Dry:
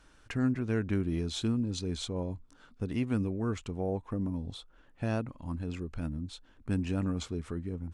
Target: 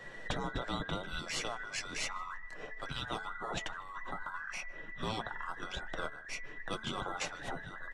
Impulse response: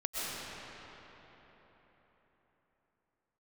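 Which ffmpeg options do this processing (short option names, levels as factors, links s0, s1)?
-filter_complex "[0:a]afftfilt=real='real(if(between(b,1,1012),(2*floor((b-1)/92)+1)*92-b,b),0)':imag='imag(if(between(b,1,1012),(2*floor((b-1)/92)+1)*92-b,b),0)*if(between(b,1,1012),-1,1)':win_size=2048:overlap=0.75,afftfilt=real='re*lt(hypot(re,im),0.0251)':imag='im*lt(hypot(re,im),0.0251)':win_size=1024:overlap=0.75,lowpass=8800,highshelf=f=4000:g=-10,bandreject=f=4800:w=27,bandreject=f=219.5:t=h:w=4,bandreject=f=439:t=h:w=4,bandreject=f=658.5:t=h:w=4,bandreject=f=878:t=h:w=4,bandreject=f=1097.5:t=h:w=4,bandreject=f=1317:t=h:w=4,bandreject=f=1536.5:t=h:w=4,bandreject=f=1756:t=h:w=4,bandreject=f=1975.5:t=h:w=4,bandreject=f=2195:t=h:w=4,bandreject=f=2414.5:t=h:w=4,acrossover=split=200|3800[s0][s1][s2];[s0]acontrast=90[s3];[s3][s1][s2]amix=inputs=3:normalize=0,flanger=delay=5.3:depth=2.2:regen=-43:speed=0.86:shape=triangular,asplit=2[s4][s5];[s5]adelay=154,lowpass=f=2400:p=1,volume=0.0891,asplit=2[s6][s7];[s7]adelay=154,lowpass=f=2400:p=1,volume=0.53,asplit=2[s8][s9];[s9]adelay=154,lowpass=f=2400:p=1,volume=0.53,asplit=2[s10][s11];[s11]adelay=154,lowpass=f=2400:p=1,volume=0.53[s12];[s6][s8][s10][s12]amix=inputs=4:normalize=0[s13];[s4][s13]amix=inputs=2:normalize=0,volume=6.31"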